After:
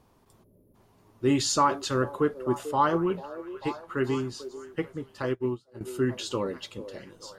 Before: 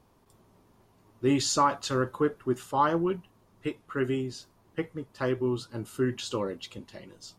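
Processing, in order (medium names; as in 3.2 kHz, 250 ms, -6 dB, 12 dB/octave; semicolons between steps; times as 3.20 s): 0.44–0.75 s: time-frequency box 640–10000 Hz -25 dB; repeats whose band climbs or falls 443 ms, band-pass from 480 Hz, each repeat 0.7 oct, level -10 dB; 5.22–5.81 s: upward expansion 2.5:1, over -42 dBFS; trim +1 dB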